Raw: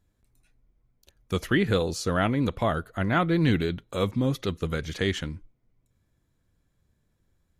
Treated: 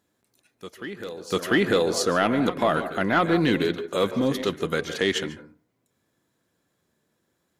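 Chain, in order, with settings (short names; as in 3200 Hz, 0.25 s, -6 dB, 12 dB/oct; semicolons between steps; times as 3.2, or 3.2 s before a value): HPF 250 Hz 12 dB/oct; notch 2300 Hz, Q 23; in parallel at -2 dB: level quantiser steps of 17 dB; on the sum: soft clip -11.5 dBFS, distortion -22 dB; reverse echo 0.695 s -14.5 dB; on a send at -12 dB: reverb RT60 0.30 s, pre-delay 0.135 s; on the sum: gain +3 dB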